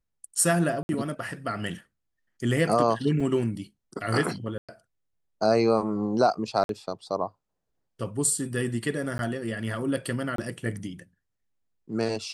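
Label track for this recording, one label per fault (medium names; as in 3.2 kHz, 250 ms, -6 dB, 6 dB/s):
0.830000	0.890000	dropout 61 ms
3.200000	3.200000	dropout 4.5 ms
4.580000	4.690000	dropout 106 ms
6.640000	6.690000	dropout 52 ms
9.180000	9.190000	dropout
10.360000	10.380000	dropout 23 ms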